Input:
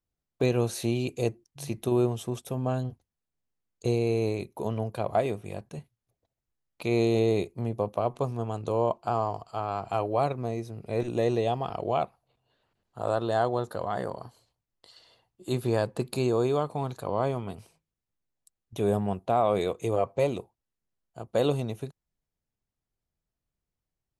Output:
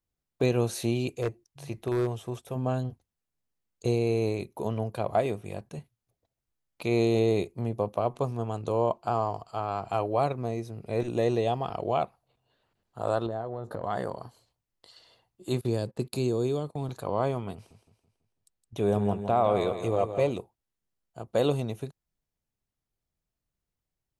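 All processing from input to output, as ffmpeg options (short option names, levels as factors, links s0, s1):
-filter_complex "[0:a]asettb=1/sr,asplit=3[s0][s1][s2];[s0]atrim=end=1.104[s3];[s1]atrim=start=1.1:end=2.56,asetpts=PTS-STARTPTS,afade=t=in:d=0.004:c=qsin,afade=t=out:st=1.456:d=0.004:c=qsin,acrossover=split=2600[s4][s5];[s5]acompressor=threshold=0.00355:ratio=4:attack=1:release=60[s6];[s4][s6]amix=inputs=2:normalize=0,equalizer=f=220:w=1.2:g=-6.5,aeval=exprs='0.1*(abs(mod(val(0)/0.1+3,4)-2)-1)':c=same[s7];[s2]atrim=start=2.556[s8];[s3][s7]acrossfade=d=0.004:c1=hsin:c2=qsin[s9];[s9][s8]acrossfade=d=0.004:c1=qsin:c2=hsin,asettb=1/sr,asplit=3[s10][s11][s12];[s10]atrim=end=13.264[s13];[s11]atrim=start=13.26:end=13.84,asetpts=PTS-STARTPTS,afade=t=in:d=0.004:c=qsin,afade=t=out:st=0.576:d=0.004:c=qsin,tiltshelf=f=1400:g=8,acompressor=threshold=0.0316:ratio=10:attack=3.2:release=140:knee=1:detection=peak,asplit=2[s14][s15];[s15]adelay=18,volume=0.282[s16];[s14][s16]amix=inputs=2:normalize=0,atrim=end_sample=25578[s17];[s12]atrim=start=13.836[s18];[s13][s17]acrossfade=d=0.004:c1=hsin:c2=qsin[s19];[s19][s18]acrossfade=d=0.004:c1=qsin:c2=hsin,asettb=1/sr,asplit=3[s20][s21][s22];[s20]atrim=end=15.614[s23];[s21]atrim=start=15.61:end=16.89,asetpts=PTS-STARTPTS,afade=t=in:d=0.004:c=qsin,afade=t=out:st=1.276:d=0.004:c=qsin,agate=range=0.1:threshold=0.00891:ratio=16:release=100:detection=peak,acrossover=split=480|3000[s24][s25][s26];[s25]acompressor=threshold=0.00562:ratio=3:attack=3.2:release=140:knee=2.83:detection=peak[s27];[s24][s27][s26]amix=inputs=3:normalize=0[s28];[s22]atrim=start=16.886[s29];[s23][s28]acrossfade=d=0.004:c1=hsin:c2=qsin[s30];[s30][s29]acrossfade=d=0.004:c1=qsin:c2=hsin,asettb=1/sr,asplit=3[s31][s32][s33];[s31]atrim=end=17.544[s34];[s32]atrim=start=17.54:end=20.31,asetpts=PTS-STARTPTS,afade=t=in:d=0.004:c=qsin,afade=t=out:st=2.766:d=0.004:c=qsin,highshelf=f=9100:g=-10,aecho=1:1:165|330|495|660|825:0.335|0.144|0.0619|0.0266|0.0115,atrim=end_sample=122157[s35];[s33]atrim=start=20.306[s36];[s34][s35]acrossfade=d=0.004:c1=hsin:c2=qsin[s37];[s37][s36]acrossfade=d=0.004:c1=qsin:c2=hsin"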